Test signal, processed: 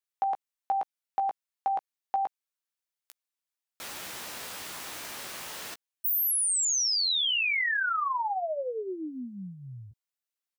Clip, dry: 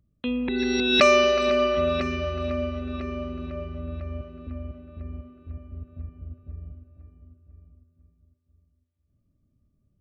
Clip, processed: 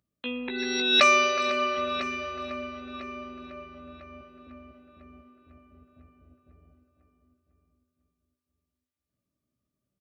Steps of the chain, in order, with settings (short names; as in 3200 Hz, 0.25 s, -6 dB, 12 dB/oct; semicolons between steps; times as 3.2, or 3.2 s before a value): HPF 860 Hz 6 dB/oct; doubler 16 ms -8 dB